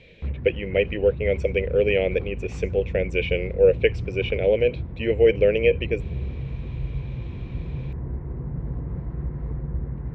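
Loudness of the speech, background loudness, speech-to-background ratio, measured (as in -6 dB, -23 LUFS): -23.0 LUFS, -32.5 LUFS, 9.5 dB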